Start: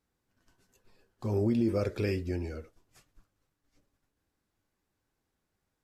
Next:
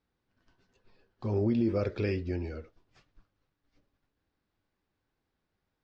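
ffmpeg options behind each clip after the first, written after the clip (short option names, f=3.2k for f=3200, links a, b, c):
-af "lowpass=f=4.9k:w=0.5412,lowpass=f=4.9k:w=1.3066"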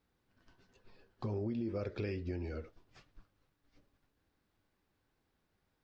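-af "acompressor=threshold=-39dB:ratio=4,volume=2.5dB"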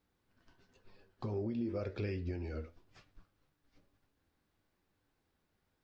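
-af "flanger=delay=9.8:depth=3.8:regen=76:speed=1:shape=triangular,volume=4dB"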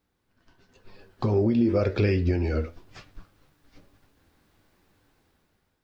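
-af "dynaudnorm=f=350:g=5:m=11.5dB,volume=3.5dB"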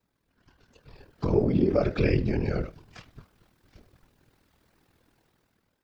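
-af "aeval=exprs='val(0)*sin(2*PI*20*n/s)':c=same,afftfilt=real='hypot(re,im)*cos(2*PI*random(0))':imag='hypot(re,im)*sin(2*PI*random(1))':win_size=512:overlap=0.75,volume=8dB"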